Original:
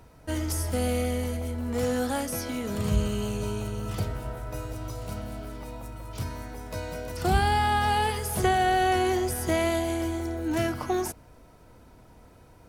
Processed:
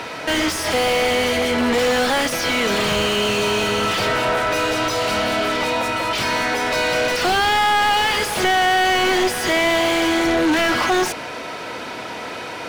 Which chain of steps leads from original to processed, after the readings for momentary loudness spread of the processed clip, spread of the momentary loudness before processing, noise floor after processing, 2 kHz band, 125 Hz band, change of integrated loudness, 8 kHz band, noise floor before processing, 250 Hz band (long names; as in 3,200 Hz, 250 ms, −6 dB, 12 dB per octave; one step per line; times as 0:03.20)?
8 LU, 13 LU, −31 dBFS, +15.5 dB, −3.0 dB, +10.0 dB, +9.5 dB, −53 dBFS, +7.5 dB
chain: meter weighting curve D
mid-hump overdrive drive 37 dB, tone 1,600 Hz, clips at −8.5 dBFS